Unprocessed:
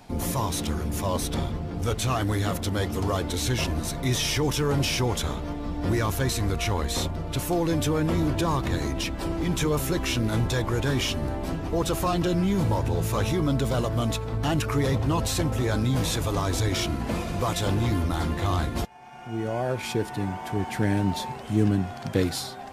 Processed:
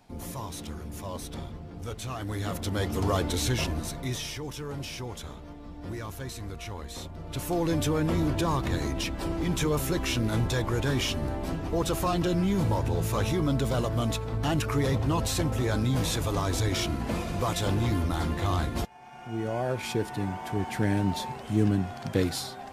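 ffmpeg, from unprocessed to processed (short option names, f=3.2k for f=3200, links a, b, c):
-af "volume=10.5dB,afade=t=in:st=2.17:d=1.03:silence=0.298538,afade=t=out:st=3.2:d=1.18:silence=0.237137,afade=t=in:st=7.08:d=0.57:silence=0.316228"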